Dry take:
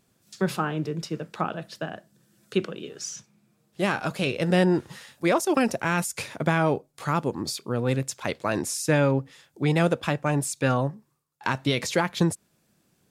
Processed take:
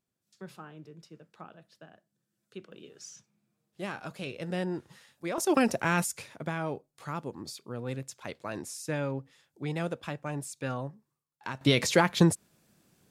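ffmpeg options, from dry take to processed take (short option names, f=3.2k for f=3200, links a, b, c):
-af "asetnsamples=n=441:p=0,asendcmd='2.72 volume volume -12dB;5.38 volume volume -2dB;6.17 volume volume -11dB;11.61 volume volume 1dB',volume=-19.5dB"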